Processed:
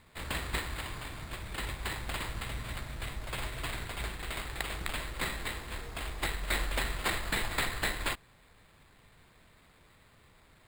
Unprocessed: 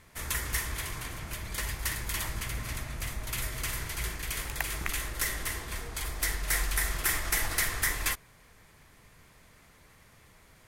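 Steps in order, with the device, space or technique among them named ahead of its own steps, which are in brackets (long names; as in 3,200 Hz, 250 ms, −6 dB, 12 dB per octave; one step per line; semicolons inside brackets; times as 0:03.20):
crushed at another speed (tape speed factor 0.5×; decimation without filtering 15×; tape speed factor 2×)
level −3 dB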